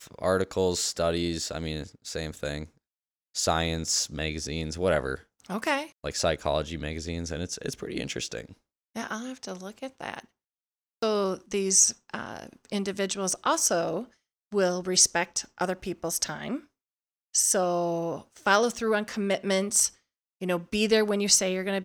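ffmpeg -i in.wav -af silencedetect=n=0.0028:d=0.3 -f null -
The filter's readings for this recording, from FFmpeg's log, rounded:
silence_start: 2.69
silence_end: 3.35 | silence_duration: 0.66
silence_start: 8.54
silence_end: 8.95 | silence_duration: 0.41
silence_start: 10.25
silence_end: 11.02 | silence_duration: 0.77
silence_start: 14.13
silence_end: 14.52 | silence_duration: 0.38
silence_start: 16.65
silence_end: 17.34 | silence_duration: 0.69
silence_start: 19.94
silence_end: 20.41 | silence_duration: 0.47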